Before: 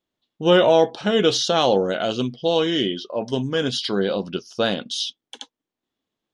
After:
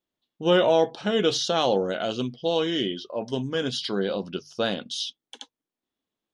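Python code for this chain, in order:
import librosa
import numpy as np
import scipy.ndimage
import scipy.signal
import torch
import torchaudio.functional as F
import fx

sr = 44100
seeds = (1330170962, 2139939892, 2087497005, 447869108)

y = fx.hum_notches(x, sr, base_hz=50, count=3)
y = y * librosa.db_to_amplitude(-4.5)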